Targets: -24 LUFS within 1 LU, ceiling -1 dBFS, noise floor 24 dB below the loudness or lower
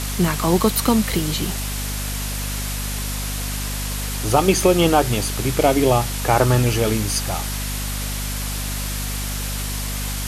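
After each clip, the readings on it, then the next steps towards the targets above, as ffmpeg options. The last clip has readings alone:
hum 50 Hz; harmonics up to 250 Hz; hum level -25 dBFS; noise floor -26 dBFS; noise floor target -45 dBFS; loudness -21.0 LUFS; peak -3.0 dBFS; loudness target -24.0 LUFS
-> -af "bandreject=f=50:t=h:w=6,bandreject=f=100:t=h:w=6,bandreject=f=150:t=h:w=6,bandreject=f=200:t=h:w=6,bandreject=f=250:t=h:w=6"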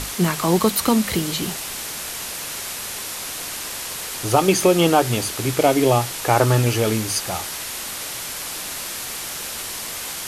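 hum none; noise floor -31 dBFS; noise floor target -46 dBFS
-> -af "afftdn=nr=15:nf=-31"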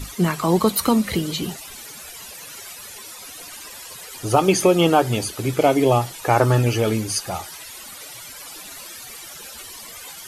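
noise floor -39 dBFS; noise floor target -44 dBFS
-> -af "afftdn=nr=6:nf=-39"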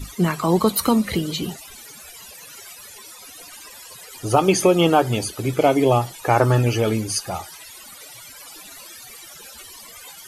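noise floor -42 dBFS; noise floor target -44 dBFS
-> -af "afftdn=nr=6:nf=-42"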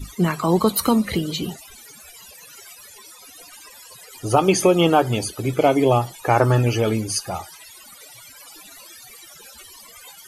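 noise floor -45 dBFS; loudness -20.0 LUFS; peak -3.5 dBFS; loudness target -24.0 LUFS
-> -af "volume=-4dB"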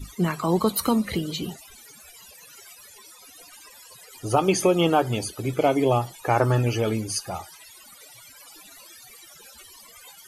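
loudness -24.0 LUFS; peak -7.5 dBFS; noise floor -49 dBFS

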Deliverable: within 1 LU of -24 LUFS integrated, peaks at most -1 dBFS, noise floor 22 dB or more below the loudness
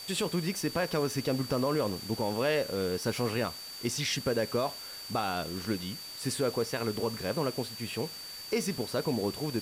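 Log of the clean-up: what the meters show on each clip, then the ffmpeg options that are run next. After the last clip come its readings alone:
steady tone 4600 Hz; tone level -42 dBFS; noise floor -43 dBFS; noise floor target -54 dBFS; loudness -32.0 LUFS; peak -19.0 dBFS; loudness target -24.0 LUFS
-> -af "bandreject=f=4.6k:w=30"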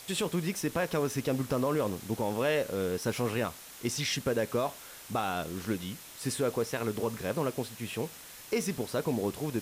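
steady tone none; noise floor -49 dBFS; noise floor target -55 dBFS
-> -af "afftdn=nr=6:nf=-49"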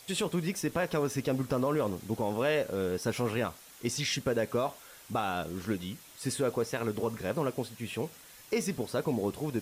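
noise floor -53 dBFS; noise floor target -55 dBFS
-> -af "afftdn=nr=6:nf=-53"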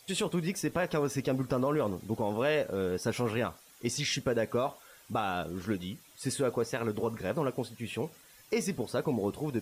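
noise floor -58 dBFS; loudness -32.5 LUFS; peak -19.5 dBFS; loudness target -24.0 LUFS
-> -af "volume=8.5dB"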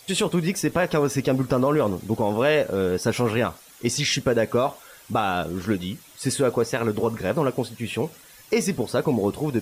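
loudness -24.0 LUFS; peak -11.0 dBFS; noise floor -49 dBFS

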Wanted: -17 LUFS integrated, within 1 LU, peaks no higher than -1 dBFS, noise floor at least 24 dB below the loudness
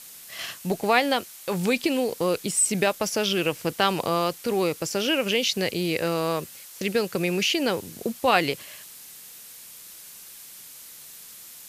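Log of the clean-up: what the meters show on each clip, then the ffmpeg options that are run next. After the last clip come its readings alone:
noise floor -45 dBFS; noise floor target -49 dBFS; loudness -24.5 LUFS; peak -4.0 dBFS; loudness target -17.0 LUFS
-> -af "afftdn=nr=6:nf=-45"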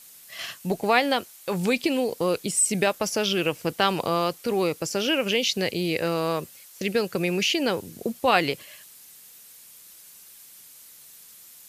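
noise floor -49 dBFS; loudness -25.0 LUFS; peak -4.0 dBFS; loudness target -17.0 LUFS
-> -af "volume=8dB,alimiter=limit=-1dB:level=0:latency=1"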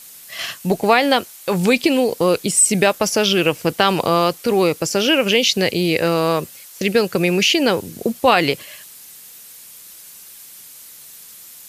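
loudness -17.0 LUFS; peak -1.0 dBFS; noise floor -41 dBFS

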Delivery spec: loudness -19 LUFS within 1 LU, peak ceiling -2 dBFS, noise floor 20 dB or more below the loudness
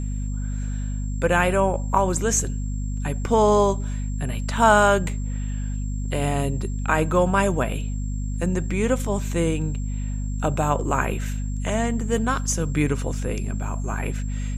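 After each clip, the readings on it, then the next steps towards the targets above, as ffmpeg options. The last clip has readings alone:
hum 50 Hz; harmonics up to 250 Hz; hum level -24 dBFS; steady tone 7500 Hz; tone level -45 dBFS; loudness -23.5 LUFS; peak -3.5 dBFS; loudness target -19.0 LUFS
-> -af "bandreject=f=50:t=h:w=6,bandreject=f=100:t=h:w=6,bandreject=f=150:t=h:w=6,bandreject=f=200:t=h:w=6,bandreject=f=250:t=h:w=6"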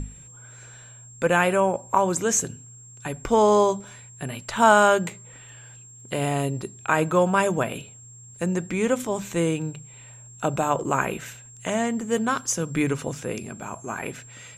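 hum none; steady tone 7500 Hz; tone level -45 dBFS
-> -af "bandreject=f=7.5k:w=30"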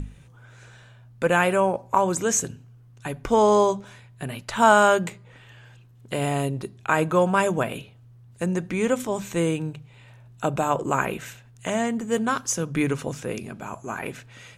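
steady tone none; loudness -23.5 LUFS; peak -4.0 dBFS; loudness target -19.0 LUFS
-> -af "volume=4.5dB,alimiter=limit=-2dB:level=0:latency=1"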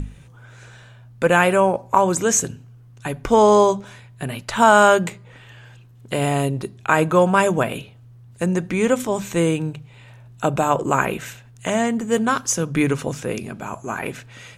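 loudness -19.5 LUFS; peak -2.0 dBFS; noise floor -46 dBFS

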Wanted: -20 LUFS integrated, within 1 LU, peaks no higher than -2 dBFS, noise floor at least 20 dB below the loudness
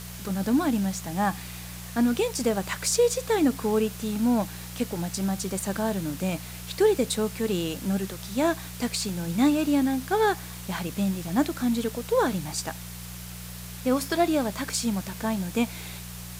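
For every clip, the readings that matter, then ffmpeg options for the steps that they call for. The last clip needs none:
hum 60 Hz; harmonics up to 180 Hz; hum level -38 dBFS; noise floor -39 dBFS; noise floor target -47 dBFS; loudness -26.5 LUFS; peak -10.0 dBFS; loudness target -20.0 LUFS
-> -af "bandreject=f=60:t=h:w=4,bandreject=f=120:t=h:w=4,bandreject=f=180:t=h:w=4"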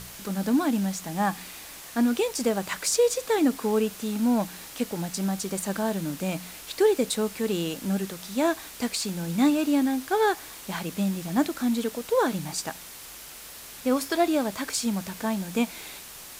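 hum none; noise floor -43 dBFS; noise floor target -47 dBFS
-> -af "afftdn=nr=6:nf=-43"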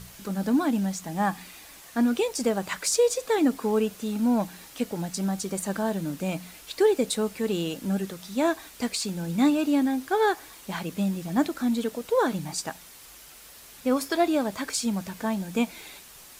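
noise floor -48 dBFS; loudness -27.0 LUFS; peak -10.5 dBFS; loudness target -20.0 LUFS
-> -af "volume=7dB"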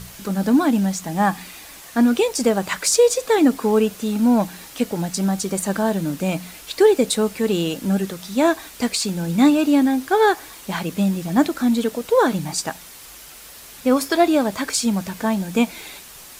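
loudness -20.0 LUFS; peak -3.5 dBFS; noise floor -41 dBFS

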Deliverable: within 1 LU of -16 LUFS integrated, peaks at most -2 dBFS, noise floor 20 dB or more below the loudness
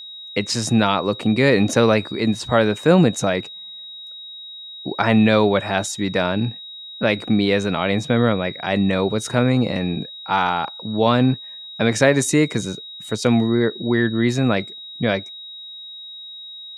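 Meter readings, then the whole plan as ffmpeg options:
steady tone 3800 Hz; tone level -34 dBFS; loudness -19.5 LUFS; peak -2.0 dBFS; loudness target -16.0 LUFS
-> -af "bandreject=f=3.8k:w=30"
-af "volume=3.5dB,alimiter=limit=-2dB:level=0:latency=1"

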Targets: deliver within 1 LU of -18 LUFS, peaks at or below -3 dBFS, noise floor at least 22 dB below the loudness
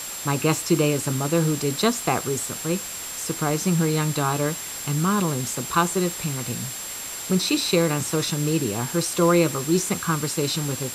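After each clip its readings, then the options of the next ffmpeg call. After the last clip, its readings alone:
steady tone 7500 Hz; tone level -34 dBFS; noise floor -33 dBFS; noise floor target -46 dBFS; loudness -23.5 LUFS; peak -6.5 dBFS; loudness target -18.0 LUFS
-> -af "bandreject=f=7.5k:w=30"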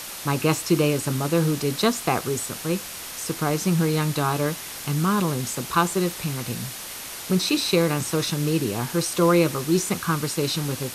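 steady tone none; noise floor -36 dBFS; noise floor target -46 dBFS
-> -af "afftdn=nr=10:nf=-36"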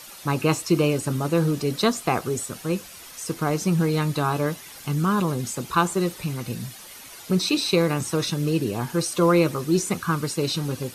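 noise floor -43 dBFS; noise floor target -46 dBFS
-> -af "afftdn=nr=6:nf=-43"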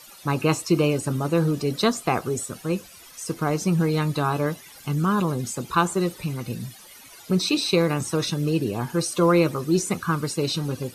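noise floor -47 dBFS; loudness -24.0 LUFS; peak -7.0 dBFS; loudness target -18.0 LUFS
-> -af "volume=6dB,alimiter=limit=-3dB:level=0:latency=1"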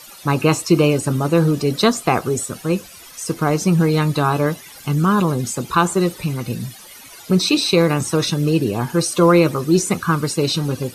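loudness -18.0 LUFS; peak -3.0 dBFS; noise floor -41 dBFS

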